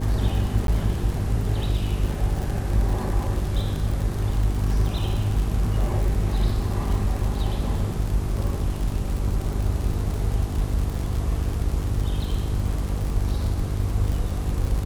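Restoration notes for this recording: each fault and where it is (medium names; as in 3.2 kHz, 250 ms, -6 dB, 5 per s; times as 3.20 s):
buzz 50 Hz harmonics 9 -27 dBFS
crackle 82 per s -27 dBFS
0.67–0.68 s: dropout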